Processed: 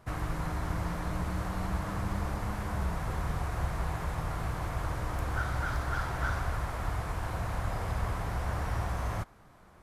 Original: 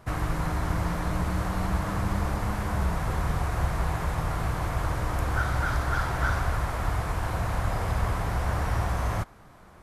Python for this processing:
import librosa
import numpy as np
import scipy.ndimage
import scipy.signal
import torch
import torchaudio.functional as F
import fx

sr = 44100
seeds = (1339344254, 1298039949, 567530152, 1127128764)

y = fx.tracing_dist(x, sr, depth_ms=0.02)
y = y * librosa.db_to_amplitude(-5.5)